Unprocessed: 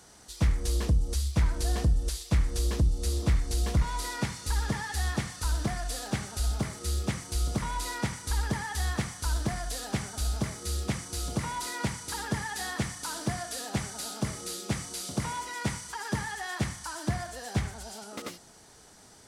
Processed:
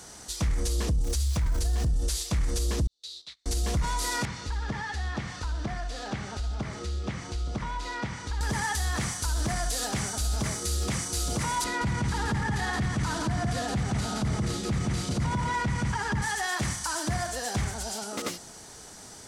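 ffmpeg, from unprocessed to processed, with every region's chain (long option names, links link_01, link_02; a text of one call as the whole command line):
ffmpeg -i in.wav -filter_complex "[0:a]asettb=1/sr,asplit=3[link_01][link_02][link_03];[link_01]atrim=end=1.044[link_04];[link_02]atrim=start=1.04:end=1.86,asetpts=PTS-STARTPTS,afade=type=in:duration=0.004:curve=qsin,afade=type=out:start_time=0.816:duration=0.004:curve=qsin,bandreject=frequency=50:width_type=h:width=6,bandreject=frequency=100:width_type=h:width=6,bandreject=frequency=150:width_type=h:width=6,bandreject=frequency=200:width_type=h:width=6,bandreject=frequency=250:width_type=h:width=6,bandreject=frequency=300:width_type=h:width=6,asubboost=boost=8.5:cutoff=170,acrusher=bits=9:dc=4:mix=0:aa=0.000001[link_05];[link_03]atrim=start=1.856[link_06];[link_04][link_05]acrossfade=duration=0.004:curve1=hsin:curve2=qsin[link_07];[link_07][link_06]acrossfade=duration=0.004:curve1=qsin:curve2=hsin,asettb=1/sr,asplit=3[link_08][link_09][link_10];[link_08]atrim=end=2.874[link_11];[link_09]atrim=start=2.87:end=3.46,asetpts=PTS-STARTPTS,afade=type=in:duration=0.004:curve=qsin,afade=type=out:start_time=0.586:duration=0.004:curve=qsin,bandpass=frequency=3900:width_type=q:width=7.5,agate=range=-23dB:threshold=-55dB:ratio=16:release=100:detection=peak[link_12];[link_10]atrim=start=3.456[link_13];[link_11][link_12]acrossfade=duration=0.004:curve1=hsin:curve2=qsin[link_14];[link_14][link_13]acrossfade=duration=0.004:curve1=qsin:curve2=hsin,asettb=1/sr,asplit=3[link_15][link_16][link_17];[link_15]atrim=end=4.254[link_18];[link_16]atrim=start=4.25:end=8.41,asetpts=PTS-STARTPTS,afade=type=in:duration=0.004:curve=qsin,afade=type=out:start_time=4.156:duration=0.004:curve=qsin,acompressor=threshold=-39dB:ratio=2.5:attack=3.2:release=140:knee=1:detection=peak,lowpass=3700[link_19];[link_17]atrim=start=8.406[link_20];[link_18][link_19]acrossfade=duration=0.004:curve1=hsin:curve2=qsin[link_21];[link_21][link_20]acrossfade=duration=0.004:curve1=qsin:curve2=hsin,asettb=1/sr,asplit=3[link_22][link_23][link_24];[link_22]atrim=end=11.644[link_25];[link_23]atrim=start=11.64:end=16.22,asetpts=PTS-STARTPTS,afade=type=in:duration=0.004:curve=qsin,afade=type=out:start_time=4.576:duration=0.004:curve=qsin,lowpass=10000,bass=frequency=250:gain=10,treble=frequency=4000:gain=-11,aecho=1:1:171:0.668,atrim=end_sample=201978[link_26];[link_24]atrim=start=16.216[link_27];[link_25][link_26]acrossfade=duration=0.004:curve1=hsin:curve2=qsin[link_28];[link_28][link_27]acrossfade=duration=0.004:curve1=qsin:curve2=hsin,equalizer=frequency=6700:width=1.5:gain=3.5,alimiter=level_in=3.5dB:limit=-24dB:level=0:latency=1:release=32,volume=-3.5dB,volume=7dB" out.wav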